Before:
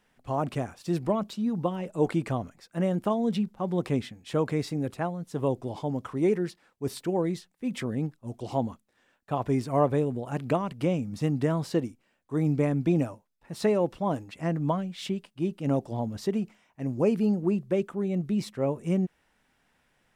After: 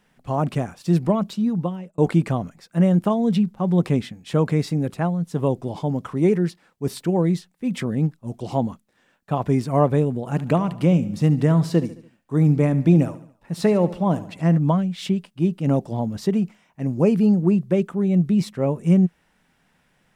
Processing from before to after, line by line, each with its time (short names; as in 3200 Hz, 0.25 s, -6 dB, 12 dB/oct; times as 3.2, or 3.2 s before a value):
1.44–1.98 fade out
10.15–14.58 feedback echo 72 ms, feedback 49%, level -16 dB
whole clip: bell 170 Hz +8 dB 0.54 oct; gain +4.5 dB